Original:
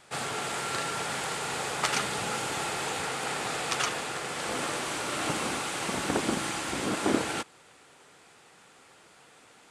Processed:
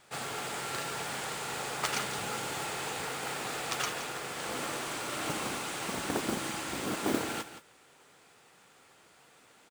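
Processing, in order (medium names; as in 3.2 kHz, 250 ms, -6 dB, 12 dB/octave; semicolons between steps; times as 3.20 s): modulation noise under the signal 14 dB; on a send: delay 170 ms -11.5 dB; on the sum: trim -4.5 dB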